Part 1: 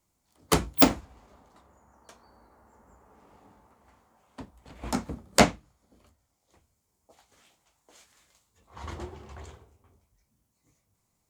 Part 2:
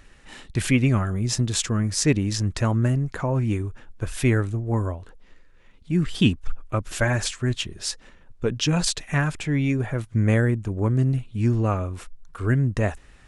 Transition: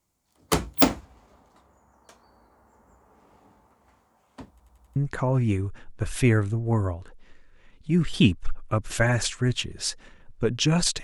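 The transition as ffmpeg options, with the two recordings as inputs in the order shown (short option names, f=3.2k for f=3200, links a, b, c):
-filter_complex "[0:a]apad=whole_dur=11.03,atrim=end=11.03,asplit=5[a][b][c][d][e];[a]atrim=end=4.602[f];[b]atrim=start=4.508:end=4.602[g];[c]atrim=start=4.508:end=4.602[h];[d]atrim=start=4.508:end=4.602[i];[e]atrim=start=4.508:end=4.602[j];[1:a]atrim=start=2.968:end=9.04[k];[f][g]acrossfade=d=0.004:c1=hsin:c2=hsin[l];[l][h]acrossfade=d=0.004:c1=hsin:c2=hsin[m];[m][i]acrossfade=d=0.004:c1=hsin:c2=hsin[n];[n][j]acrossfade=d=0.004:c1=hsin:c2=hsin[o];[o][k]acrossfade=d=0.004:c1=hsin:c2=hsin"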